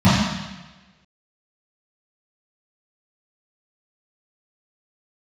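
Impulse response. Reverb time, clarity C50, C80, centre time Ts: 1.2 s, -1.5 dB, 1.5 dB, 92 ms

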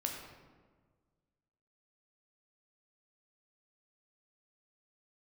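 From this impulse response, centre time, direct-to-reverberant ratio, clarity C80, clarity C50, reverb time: 51 ms, 0.5 dB, 5.0 dB, 3.5 dB, 1.5 s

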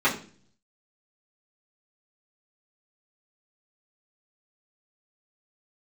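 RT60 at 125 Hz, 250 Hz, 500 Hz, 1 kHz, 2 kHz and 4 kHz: 0.85 s, 0.70 s, 0.50 s, 0.35 s, 0.40 s, 0.45 s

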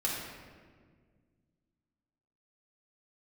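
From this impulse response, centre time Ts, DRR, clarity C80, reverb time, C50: 82 ms, -5.0 dB, 2.5 dB, 1.7 s, 0.5 dB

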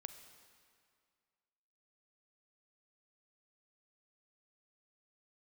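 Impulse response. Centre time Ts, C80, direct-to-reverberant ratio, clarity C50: 24 ms, 10.0 dB, 8.5 dB, 9.0 dB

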